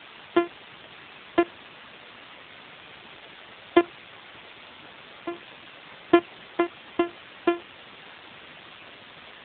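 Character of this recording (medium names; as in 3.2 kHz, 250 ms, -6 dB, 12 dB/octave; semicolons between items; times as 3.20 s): a buzz of ramps at a fixed pitch in blocks of 128 samples; tremolo saw up 2.1 Hz, depth 80%; a quantiser's noise floor 6-bit, dither triangular; AMR-NB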